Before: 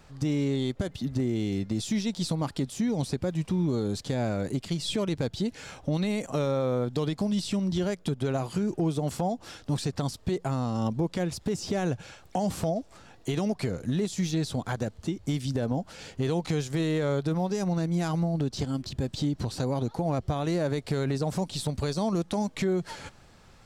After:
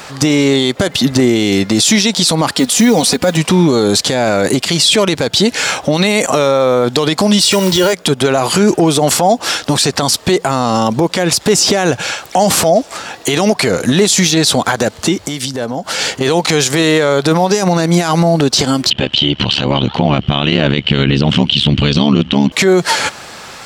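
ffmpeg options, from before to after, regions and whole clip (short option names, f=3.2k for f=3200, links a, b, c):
-filter_complex "[0:a]asettb=1/sr,asplit=3[a][b][c];[a]atrim=end=2.574[d];[b]atrim=start=2.57:end=3.37,asetpts=PTS-STARTPTS,afade=t=in:d=0.004:c=qsin,afade=t=out:st=0.796:d=0.004:c=qsin,aecho=1:1:4.1:0.57,atrim=end_sample=35280,acrusher=bits=9:mode=log:mix=0:aa=0.000001[e];[c]atrim=start=3.366[f];[d][e]acrossfade=d=0.004:c1=hsin:c2=qsin[g];[g][f]acrossfade=d=0.004:c1=qsin:c2=hsin,asettb=1/sr,asplit=3[h][i][j];[h]atrim=end=7.414[k];[i]atrim=start=7.41:end=7.93,asetpts=PTS-STARTPTS,afade=t=in:d=0.004:c=qsin,afade=t=out:st=0.516:d=0.004:c=qsin,aecho=1:1:2.1:0.65,atrim=end_sample=22932,acrusher=bits=6:mode=log:mix=0:aa=0.000001[l];[j]atrim=start=7.926[m];[k][l]acrossfade=d=0.004:c1=hsin:c2=qsin[n];[n][m]acrossfade=d=0.004:c1=qsin:c2=hsin,asettb=1/sr,asplit=3[o][p][q];[o]atrim=end=15.234[r];[p]atrim=start=15.23:end=16.21,asetpts=PTS-STARTPTS,afade=t=in:d=0.004:c=qsin,afade=t=out:st=0.976:d=0.004:c=qsin,bandreject=f=2.5k:w=19,acompressor=threshold=-37dB:ratio=8:attack=3.2:release=140:knee=1:detection=peak[s];[q]atrim=start=16.206[t];[r][s]acrossfade=d=0.004:c1=hsin:c2=qsin[u];[u][t]acrossfade=d=0.004:c1=qsin:c2=hsin,asettb=1/sr,asplit=3[v][w][x];[v]atrim=end=18.904[y];[w]atrim=start=18.9:end=22.52,asetpts=PTS-STARTPTS,afade=t=in:d=0.004:c=qsin,afade=t=out:st=3.616:d=0.004:c=qsin,asubboost=boost=11:cutoff=210,lowpass=f=3k:t=q:w=12,tremolo=f=72:d=0.947[z];[x]atrim=start=22.516[aa];[y][z]acrossfade=d=0.004:c1=hsin:c2=qsin[ab];[ab][aa]acrossfade=d=0.004:c1=qsin:c2=hsin,highpass=f=750:p=1,alimiter=level_in=30dB:limit=-1dB:release=50:level=0:latency=1,volume=-1dB"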